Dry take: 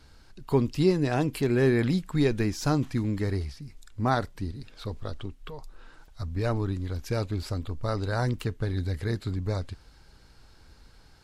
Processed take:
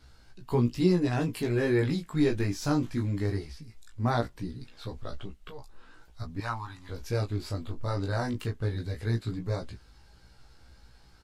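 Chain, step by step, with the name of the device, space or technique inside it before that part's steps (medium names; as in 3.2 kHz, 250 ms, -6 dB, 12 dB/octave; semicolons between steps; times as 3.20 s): double-tracked vocal (doubling 17 ms -7 dB; chorus 0.19 Hz, delay 15.5 ms, depth 4.8 ms); 6.40–6.89 s: resonant low shelf 630 Hz -12 dB, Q 3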